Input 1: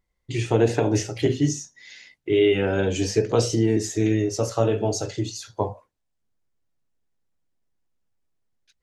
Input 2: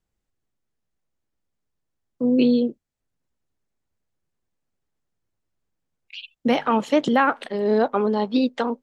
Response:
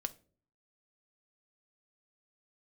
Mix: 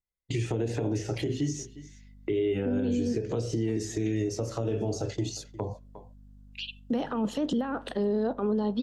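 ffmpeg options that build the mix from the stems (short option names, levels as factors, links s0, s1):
-filter_complex "[0:a]agate=range=0.0794:threshold=0.02:ratio=16:detection=peak,acrossover=split=2000|5700[s0][s1][s2];[s0]acompressor=threshold=0.0891:ratio=4[s3];[s1]acompressor=threshold=0.00891:ratio=4[s4];[s2]acompressor=threshold=0.00794:ratio=4[s5];[s3][s4][s5]amix=inputs=3:normalize=0,volume=1.26,asplit=3[s6][s7][s8];[s7]volume=0.112[s9];[s8]volume=0.0708[s10];[1:a]equalizer=f=2200:w=5.3:g=-12,alimiter=limit=0.112:level=0:latency=1:release=17,aeval=exprs='val(0)+0.002*(sin(2*PI*50*n/s)+sin(2*PI*2*50*n/s)/2+sin(2*PI*3*50*n/s)/3+sin(2*PI*4*50*n/s)/4+sin(2*PI*5*50*n/s)/5)':c=same,adelay=450,volume=1.06,asplit=2[s11][s12];[s12]volume=0.531[s13];[2:a]atrim=start_sample=2205[s14];[s9][s13]amix=inputs=2:normalize=0[s15];[s15][s14]afir=irnorm=-1:irlink=0[s16];[s10]aecho=0:1:355:1[s17];[s6][s11][s16][s17]amix=inputs=4:normalize=0,acrossover=split=460[s18][s19];[s19]acompressor=threshold=0.02:ratio=6[s20];[s18][s20]amix=inputs=2:normalize=0,alimiter=limit=0.1:level=0:latency=1:release=158"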